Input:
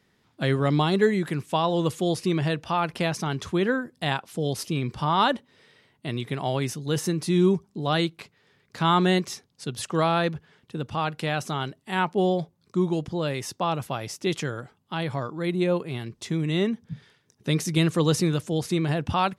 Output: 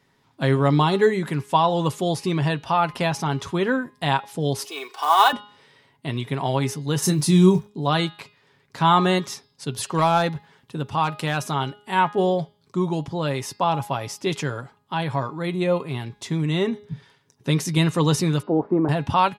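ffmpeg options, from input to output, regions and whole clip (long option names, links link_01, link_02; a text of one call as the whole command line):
ffmpeg -i in.wav -filter_complex "[0:a]asettb=1/sr,asplit=3[link_01][link_02][link_03];[link_01]atrim=end=4.664[link_04];[link_02]atrim=start=4.66:end=5.33,asetpts=PTS-STARTPTS,afade=type=in:duration=0.004:curve=qsin,afade=type=out:start_time=0.666:duration=0.004:curve=qsin,highpass=frequency=500:width=0.5412,highpass=frequency=500:width=1.3066,aecho=1:1:2.7:0.81,atrim=end_sample=29547,acrusher=bits=4:mode=log:mix=0:aa=0.000001[link_05];[link_03]atrim=start=5.326[link_06];[link_04][link_05]acrossfade=duration=0.004:curve1=hsin:curve2=qsin[link_07];[link_07][link_06]acrossfade=duration=0.004:curve1=qsin:curve2=hsin,asettb=1/sr,asplit=3[link_08][link_09][link_10];[link_08]atrim=end=7.024[link_11];[link_09]atrim=start=7.02:end=7.68,asetpts=PTS-STARTPTS,afade=type=in:duration=0.004:curve=qsin,afade=type=out:start_time=0.656:duration=0.004:curve=qsin,bass=frequency=250:gain=7,treble=frequency=4000:gain=9,acrusher=bits=8:mix=0:aa=0.5,asplit=2[link_12][link_13];[link_13]adelay=27,volume=-9dB[link_14];[link_12][link_14]amix=inputs=2:normalize=0,atrim=end_sample=29106[link_15];[link_10]atrim=start=7.676[link_16];[link_11][link_15]acrossfade=duration=0.004:curve1=hsin:curve2=qsin[link_17];[link_17][link_16]acrossfade=duration=0.004:curve1=qsin:curve2=hsin,asettb=1/sr,asplit=3[link_18][link_19][link_20];[link_18]atrim=end=9.664[link_21];[link_19]atrim=start=9.66:end=11.54,asetpts=PTS-STARTPTS,afade=type=in:duration=0.004:curve=qsin,afade=type=out:start_time=1.876:duration=0.004:curve=qsin,highshelf=frequency=8000:gain=5.5,asoftclip=type=hard:threshold=-14.5dB[link_22];[link_20]atrim=start=11.536[link_23];[link_21][link_22]acrossfade=duration=0.004:curve1=hsin:curve2=qsin[link_24];[link_24][link_23]acrossfade=duration=0.004:curve1=qsin:curve2=hsin,asettb=1/sr,asplit=3[link_25][link_26][link_27];[link_25]atrim=end=18.424[link_28];[link_26]atrim=start=18.42:end=18.89,asetpts=PTS-STARTPTS,afade=type=in:duration=0.004:curve=qsin,afade=type=out:start_time=0.466:duration=0.004:curve=qsin,lowpass=frequency=1100:width=0.5412,lowpass=frequency=1100:width=1.3066,acontrast=25,lowshelf=frequency=180:width_type=q:width=1.5:gain=-13[link_29];[link_27]atrim=start=18.886[link_30];[link_28][link_29]acrossfade=duration=0.004:curve1=hsin:curve2=qsin[link_31];[link_31][link_30]acrossfade=duration=0.004:curve1=qsin:curve2=hsin,equalizer=frequency=940:width_type=o:width=0.43:gain=7,aecho=1:1:7.3:0.37,bandreject=frequency=207:width_type=h:width=4,bandreject=frequency=414:width_type=h:width=4,bandreject=frequency=621:width_type=h:width=4,bandreject=frequency=828:width_type=h:width=4,bandreject=frequency=1035:width_type=h:width=4,bandreject=frequency=1242:width_type=h:width=4,bandreject=frequency=1449:width_type=h:width=4,bandreject=frequency=1656:width_type=h:width=4,bandreject=frequency=1863:width_type=h:width=4,bandreject=frequency=2070:width_type=h:width=4,bandreject=frequency=2277:width_type=h:width=4,bandreject=frequency=2484:width_type=h:width=4,bandreject=frequency=2691:width_type=h:width=4,bandreject=frequency=2898:width_type=h:width=4,bandreject=frequency=3105:width_type=h:width=4,bandreject=frequency=3312:width_type=h:width=4,bandreject=frequency=3519:width_type=h:width=4,bandreject=frequency=3726:width_type=h:width=4,bandreject=frequency=3933:width_type=h:width=4,bandreject=frequency=4140:width_type=h:width=4,bandreject=frequency=4347:width_type=h:width=4,bandreject=frequency=4554:width_type=h:width=4,bandreject=frequency=4761:width_type=h:width=4,bandreject=frequency=4968:width_type=h:width=4,bandreject=frequency=5175:width_type=h:width=4,volume=1.5dB" out.wav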